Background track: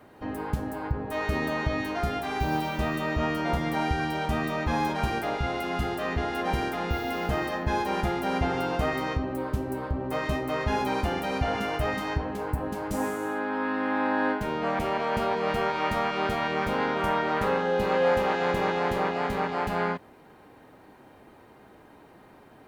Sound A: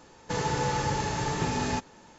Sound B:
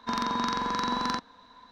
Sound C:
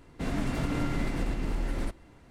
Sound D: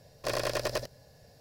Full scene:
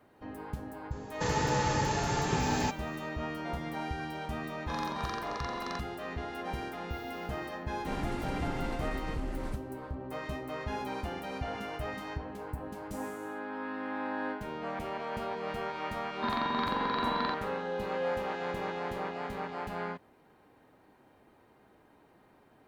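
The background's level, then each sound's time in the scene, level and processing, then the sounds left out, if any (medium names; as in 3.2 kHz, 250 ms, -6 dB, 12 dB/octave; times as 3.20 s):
background track -9.5 dB
0.91 s: add A -1.5 dB
4.61 s: add B -10.5 dB + comb 1.7 ms
7.65 s: add C -7 dB
16.15 s: add B -3.5 dB + steep low-pass 4.4 kHz 72 dB/octave
not used: D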